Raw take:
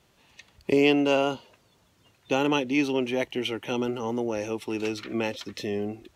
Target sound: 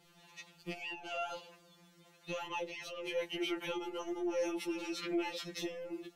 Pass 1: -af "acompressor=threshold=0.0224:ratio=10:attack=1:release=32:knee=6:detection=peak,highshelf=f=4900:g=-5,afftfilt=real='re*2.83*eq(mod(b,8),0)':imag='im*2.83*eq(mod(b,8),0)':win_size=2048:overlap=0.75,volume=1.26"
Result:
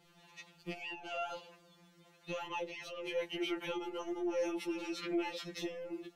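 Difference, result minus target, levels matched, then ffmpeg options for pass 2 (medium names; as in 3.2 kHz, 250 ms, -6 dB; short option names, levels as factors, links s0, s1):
8 kHz band -3.0 dB
-af "acompressor=threshold=0.0224:ratio=10:attack=1:release=32:knee=6:detection=peak,afftfilt=real='re*2.83*eq(mod(b,8),0)':imag='im*2.83*eq(mod(b,8),0)':win_size=2048:overlap=0.75,volume=1.26"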